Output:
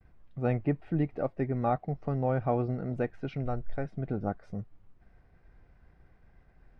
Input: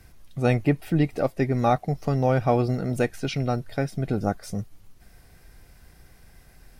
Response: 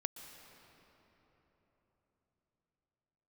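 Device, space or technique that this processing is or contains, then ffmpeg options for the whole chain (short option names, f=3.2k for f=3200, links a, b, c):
hearing-loss simulation: -filter_complex "[0:a]lowpass=1.7k,agate=range=-33dB:threshold=-50dB:ratio=3:detection=peak,asplit=3[a][b][c];[a]afade=t=out:st=3.44:d=0.02[d];[b]asubboost=boost=10:cutoff=55,afade=t=in:st=3.44:d=0.02,afade=t=out:st=3.85:d=0.02[e];[c]afade=t=in:st=3.85:d=0.02[f];[d][e][f]amix=inputs=3:normalize=0,volume=-7dB"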